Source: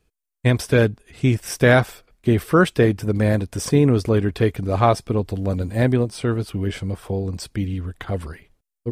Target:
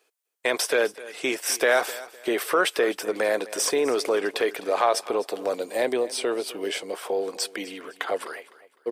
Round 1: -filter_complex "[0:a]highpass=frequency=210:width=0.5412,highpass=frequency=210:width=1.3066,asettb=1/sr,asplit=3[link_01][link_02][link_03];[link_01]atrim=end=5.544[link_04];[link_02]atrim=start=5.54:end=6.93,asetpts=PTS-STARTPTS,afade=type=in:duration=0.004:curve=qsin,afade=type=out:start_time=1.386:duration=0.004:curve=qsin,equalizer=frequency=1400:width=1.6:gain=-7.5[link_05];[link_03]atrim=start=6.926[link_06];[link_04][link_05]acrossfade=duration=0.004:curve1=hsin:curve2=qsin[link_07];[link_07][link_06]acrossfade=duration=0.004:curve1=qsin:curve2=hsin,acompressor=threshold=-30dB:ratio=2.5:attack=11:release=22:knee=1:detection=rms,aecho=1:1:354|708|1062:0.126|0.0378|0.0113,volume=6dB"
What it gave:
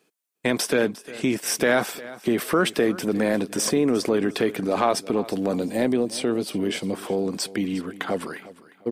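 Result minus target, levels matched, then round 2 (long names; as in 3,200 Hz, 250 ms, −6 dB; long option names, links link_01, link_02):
250 Hz band +8.5 dB; echo 100 ms late
-filter_complex "[0:a]highpass=frequency=430:width=0.5412,highpass=frequency=430:width=1.3066,asettb=1/sr,asplit=3[link_01][link_02][link_03];[link_01]atrim=end=5.544[link_04];[link_02]atrim=start=5.54:end=6.93,asetpts=PTS-STARTPTS,afade=type=in:duration=0.004:curve=qsin,afade=type=out:start_time=1.386:duration=0.004:curve=qsin,equalizer=frequency=1400:width=1.6:gain=-7.5[link_05];[link_03]atrim=start=6.926[link_06];[link_04][link_05]acrossfade=duration=0.004:curve1=hsin:curve2=qsin[link_07];[link_07][link_06]acrossfade=duration=0.004:curve1=qsin:curve2=hsin,acompressor=threshold=-30dB:ratio=2.5:attack=11:release=22:knee=1:detection=rms,aecho=1:1:254|508|762:0.126|0.0378|0.0113,volume=6dB"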